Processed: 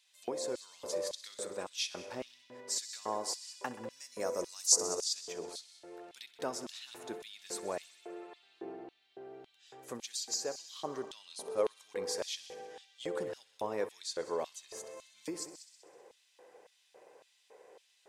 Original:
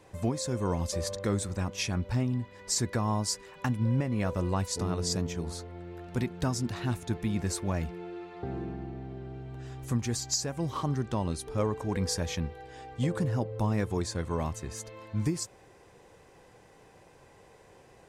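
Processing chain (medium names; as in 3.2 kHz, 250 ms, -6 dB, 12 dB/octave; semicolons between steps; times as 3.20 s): 3.90–5.04 s: resonant high shelf 4.4 kHz +11 dB, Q 3; multi-head delay 64 ms, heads all three, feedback 49%, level -18 dB; LFO high-pass square 1.8 Hz 470–3500 Hz; trim -6 dB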